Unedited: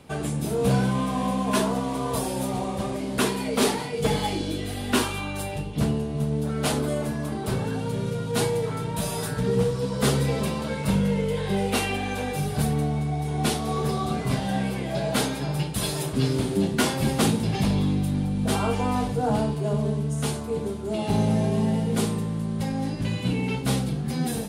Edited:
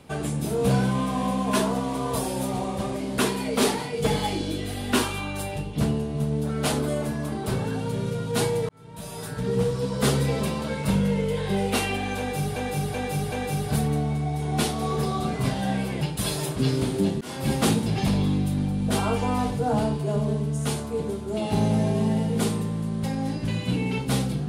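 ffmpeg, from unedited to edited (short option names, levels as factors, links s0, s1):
-filter_complex "[0:a]asplit=7[s0][s1][s2][s3][s4][s5][s6];[s0]atrim=end=8.69,asetpts=PTS-STARTPTS,afade=t=out:st=8.686:d=0.004:c=hsin[s7];[s1]atrim=start=8.69:end=12.562,asetpts=PTS-STARTPTS,afade=t=in:d=1.04[s8];[s2]atrim=start=12.178:end=12.562[s9];[s3]atrim=start=12.178:end=12.562[s10];[s4]atrim=start=12.178:end=14.872[s11];[s5]atrim=start=15.578:end=16.78,asetpts=PTS-STARTPTS,afade=t=out:st=1.198:d=0.004:c=hsin[s12];[s6]atrim=start=16.78,asetpts=PTS-STARTPTS,afade=t=in:d=0.3[s13];[s7][s8]concat=n=2:v=0:a=1[s14];[s14][s9]acrossfade=d=0.004:c1=hsin:c2=hsin[s15];[s15][s10]acrossfade=d=0.004:c1=hsin:c2=hsin[s16];[s16][s11]acrossfade=d=0.004:c1=hsin:c2=hsin[s17];[s12][s13]concat=n=2:v=0:a=1[s18];[s17][s18]acrossfade=d=0.004:c1=hsin:c2=hsin"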